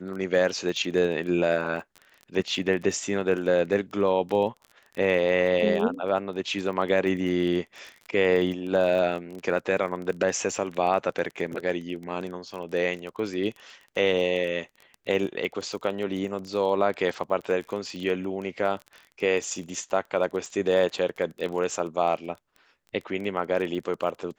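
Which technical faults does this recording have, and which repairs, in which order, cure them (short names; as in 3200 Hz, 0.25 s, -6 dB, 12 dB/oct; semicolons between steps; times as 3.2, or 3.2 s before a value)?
crackle 23/s -33 dBFS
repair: de-click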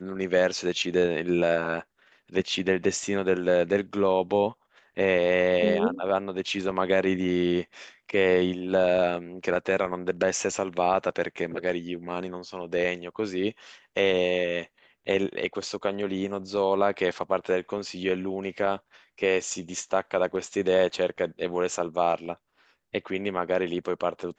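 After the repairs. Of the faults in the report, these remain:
none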